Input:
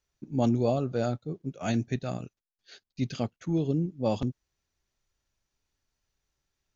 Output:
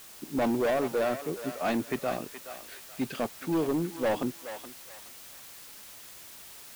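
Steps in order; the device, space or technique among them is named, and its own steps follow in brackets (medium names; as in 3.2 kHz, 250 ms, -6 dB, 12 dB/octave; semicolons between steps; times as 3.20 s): aircraft radio (band-pass 340–2400 Hz; hard clipper -30.5 dBFS, distortion -8 dB; white noise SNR 16 dB); thinning echo 423 ms, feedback 40%, high-pass 940 Hz, level -7.5 dB; trim +7 dB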